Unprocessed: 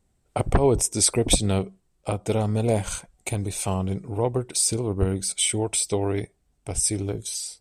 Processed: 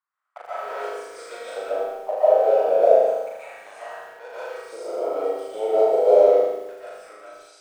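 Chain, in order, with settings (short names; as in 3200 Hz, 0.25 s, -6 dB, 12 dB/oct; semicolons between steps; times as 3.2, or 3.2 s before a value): 5.43–6.87 tilt shelf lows +9 dB, about 1200 Hz; auto-wah 500–1100 Hz, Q 5.4, down, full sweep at -21.5 dBFS; in parallel at -7 dB: crossover distortion -39.5 dBFS; on the sum: LFO high-pass square 0.32 Hz 690–1500 Hz; on a send: flutter echo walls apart 6.6 m, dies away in 1 s; on the sum: digital reverb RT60 0.77 s, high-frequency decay 0.9×, pre-delay 0.1 s, DRR -9.5 dB; lo-fi delay 90 ms, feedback 35%, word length 7-bit, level -14.5 dB; gain -1 dB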